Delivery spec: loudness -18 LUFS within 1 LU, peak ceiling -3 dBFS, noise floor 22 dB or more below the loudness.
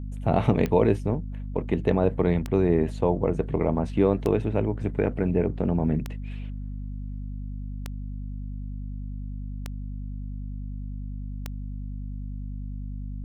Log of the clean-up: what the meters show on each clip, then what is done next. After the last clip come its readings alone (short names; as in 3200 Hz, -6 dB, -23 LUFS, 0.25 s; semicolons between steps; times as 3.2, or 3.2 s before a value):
clicks 7; hum 50 Hz; harmonics up to 250 Hz; hum level -31 dBFS; loudness -28.0 LUFS; peak -6.0 dBFS; loudness target -18.0 LUFS
-> de-click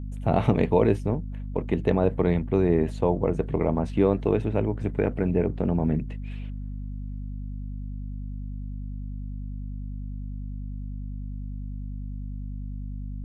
clicks 0; hum 50 Hz; harmonics up to 250 Hz; hum level -31 dBFS
-> notches 50/100/150/200/250 Hz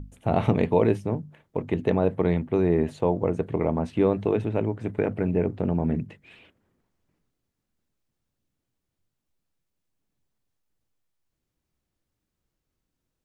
hum none; loudness -25.5 LUFS; peak -6.0 dBFS; loudness target -18.0 LUFS
-> gain +7.5 dB; limiter -3 dBFS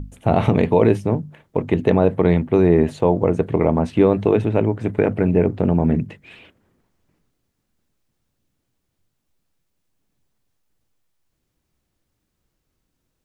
loudness -18.5 LUFS; peak -3.0 dBFS; noise floor -75 dBFS